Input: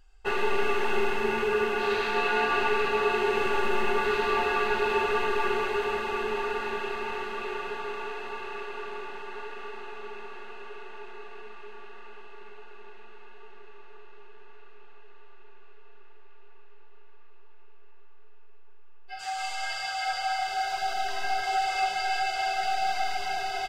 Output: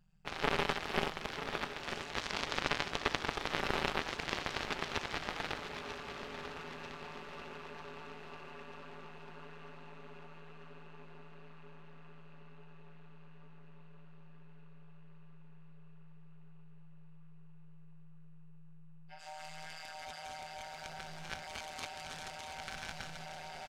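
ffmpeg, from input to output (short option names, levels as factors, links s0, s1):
-af "aeval=exprs='0.237*(cos(1*acos(clip(val(0)/0.237,-1,1)))-cos(1*PI/2))+0.0944*(cos(3*acos(clip(val(0)/0.237,-1,1)))-cos(3*PI/2))':c=same,tremolo=f=160:d=1,aecho=1:1:943|1886|2829|3772|4715|5658:0.282|0.152|0.0822|0.0444|0.024|0.0129,volume=1.78"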